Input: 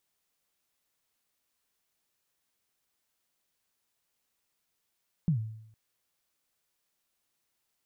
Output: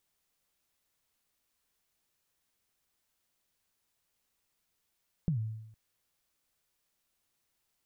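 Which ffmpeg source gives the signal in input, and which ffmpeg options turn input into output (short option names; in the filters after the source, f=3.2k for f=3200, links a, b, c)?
-f lavfi -i "aevalsrc='0.0944*pow(10,-3*t/0.75)*sin(2*PI*(180*0.103/log(110/180)*(exp(log(110/180)*min(t,0.103)/0.103)-1)+110*max(t-0.103,0)))':d=0.46:s=44100"
-af "lowshelf=f=100:g=7.5,acompressor=threshold=-29dB:ratio=6"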